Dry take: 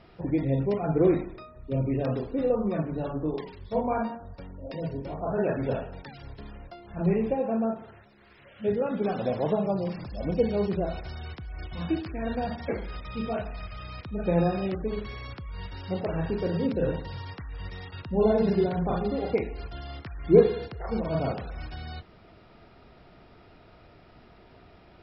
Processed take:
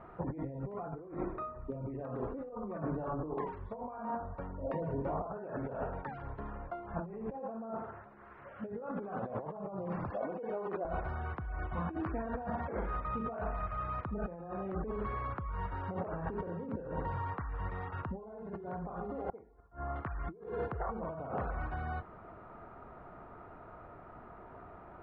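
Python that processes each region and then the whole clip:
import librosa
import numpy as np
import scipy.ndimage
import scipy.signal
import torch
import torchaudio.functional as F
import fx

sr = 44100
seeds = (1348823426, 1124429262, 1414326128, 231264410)

y = fx.chain(x, sr, fx.over_compress(threshold_db=-34.0, ratio=-1.0),
    fx.bandpass_edges(low_hz=370.0, high_hz=4800.0), at=(10.1, 10.85))
y = fx.chain(y, sr, fx.lowpass(hz=1800.0, slope=24),
    fx.gate_flip(shuts_db=-29.0, range_db=-27), at=(19.29, 19.96))
y = scipy.signal.sosfilt(scipy.signal.cheby1(3, 1.0, 1200.0, 'lowpass', fs=sr, output='sos'), y)
y = fx.tilt_shelf(y, sr, db=-8.0, hz=810.0)
y = fx.over_compress(y, sr, threshold_db=-40.0, ratio=-1.0)
y = y * 10.0 ** (1.0 / 20.0)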